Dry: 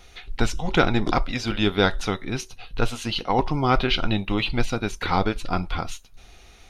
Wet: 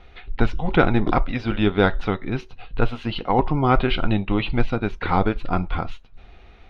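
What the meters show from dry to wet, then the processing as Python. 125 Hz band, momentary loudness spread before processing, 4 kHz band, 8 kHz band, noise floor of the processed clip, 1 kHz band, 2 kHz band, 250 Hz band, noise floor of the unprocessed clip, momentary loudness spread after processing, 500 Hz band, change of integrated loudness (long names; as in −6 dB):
+3.5 dB, 11 LU, −5.0 dB, below −20 dB, −47 dBFS, +1.5 dB, 0.0 dB, +3.0 dB, −50 dBFS, 10 LU, +2.5 dB, +2.0 dB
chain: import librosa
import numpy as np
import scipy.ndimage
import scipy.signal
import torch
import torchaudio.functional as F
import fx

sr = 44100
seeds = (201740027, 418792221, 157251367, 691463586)

y = fx.air_absorb(x, sr, metres=380.0)
y = y * librosa.db_to_amplitude(3.5)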